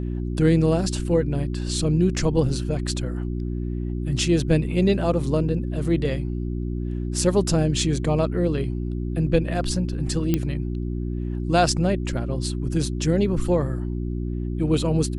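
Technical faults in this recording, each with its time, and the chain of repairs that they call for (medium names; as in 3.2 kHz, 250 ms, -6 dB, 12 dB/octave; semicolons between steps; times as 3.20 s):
hum 60 Hz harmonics 6 -27 dBFS
10.34 s: pop -8 dBFS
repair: de-click; de-hum 60 Hz, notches 6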